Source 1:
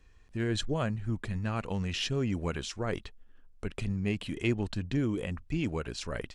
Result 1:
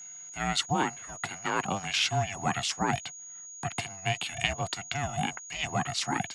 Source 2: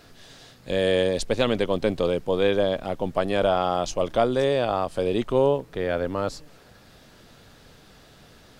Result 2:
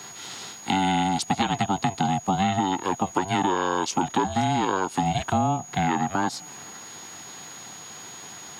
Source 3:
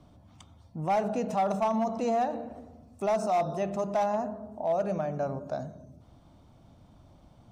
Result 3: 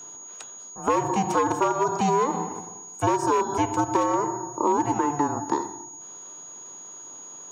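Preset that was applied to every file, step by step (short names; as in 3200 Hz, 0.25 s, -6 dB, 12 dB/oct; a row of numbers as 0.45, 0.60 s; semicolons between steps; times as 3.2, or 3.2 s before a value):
steep high-pass 390 Hz 96 dB/oct; compressor 6:1, threshold -31 dBFS; ring modulator 290 Hz; whine 6700 Hz -54 dBFS; normalise peaks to -9 dBFS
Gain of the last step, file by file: +11.5, +13.0, +14.5 dB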